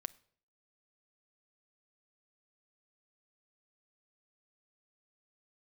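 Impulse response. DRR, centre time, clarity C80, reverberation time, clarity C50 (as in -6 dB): 12.5 dB, 3 ms, 25.0 dB, 0.60 s, 22.0 dB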